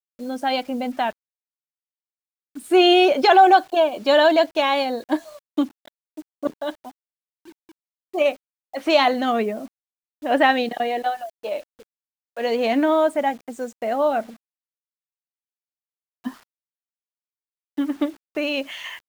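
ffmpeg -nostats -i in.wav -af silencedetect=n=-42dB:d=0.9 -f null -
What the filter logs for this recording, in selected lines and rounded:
silence_start: 1.11
silence_end: 2.56 | silence_duration: 1.45
silence_start: 14.34
silence_end: 16.25 | silence_duration: 1.91
silence_start: 16.37
silence_end: 17.78 | silence_duration: 1.41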